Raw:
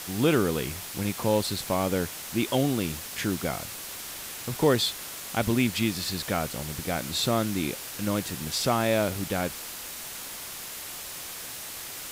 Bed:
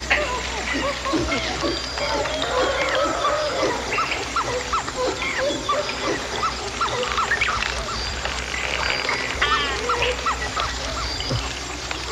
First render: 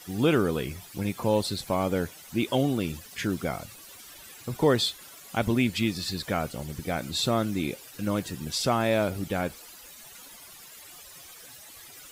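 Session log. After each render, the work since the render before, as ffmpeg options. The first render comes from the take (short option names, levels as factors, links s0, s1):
-af "afftdn=nr=14:nf=-39"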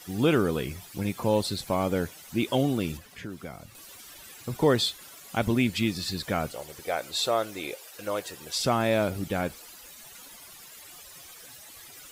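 -filter_complex "[0:a]asettb=1/sr,asplit=3[s0][s1][s2];[s0]atrim=end=2.974[s3];[s1]atrim=start=2.97:end=3.75,asetpts=PTS-STARTPTS,afade=t=in:d=0.004:c=qsin,afade=t=out:st=0.776:d=0.004:c=qsin,acrossover=split=400|840|3100[s4][s5][s6][s7];[s4]acompressor=threshold=0.00891:ratio=3[s8];[s5]acompressor=threshold=0.00355:ratio=3[s9];[s6]acompressor=threshold=0.00355:ratio=3[s10];[s7]acompressor=threshold=0.00141:ratio=3[s11];[s8][s9][s10][s11]amix=inputs=4:normalize=0[s12];[s2]atrim=start=3.746[s13];[s3][s12]acrossfade=d=0.004:c1=hsin:c2=qsin[s14];[s14][s13]acrossfade=d=0.004:c1=qsin:c2=hsin,asettb=1/sr,asplit=3[s15][s16][s17];[s15]atrim=end=6.534[s18];[s16]atrim=start=6.53:end=8.56,asetpts=PTS-STARTPTS,afade=t=in:d=0.004:c=qsin,afade=t=out:st=2.026:d=0.004:c=qsin,lowshelf=f=330:t=q:w=1.5:g=-13.5[s19];[s17]atrim=start=8.556[s20];[s18][s19]acrossfade=d=0.004:c1=hsin:c2=qsin[s21];[s21][s20]acrossfade=d=0.004:c1=qsin:c2=hsin"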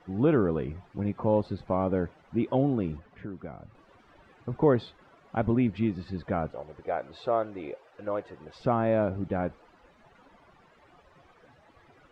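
-af "lowpass=1200"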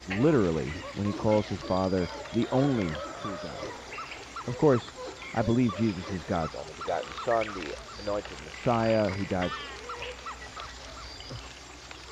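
-filter_complex "[1:a]volume=0.15[s0];[0:a][s0]amix=inputs=2:normalize=0"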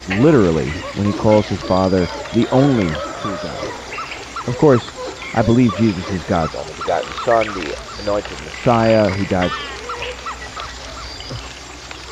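-af "volume=3.98,alimiter=limit=0.891:level=0:latency=1"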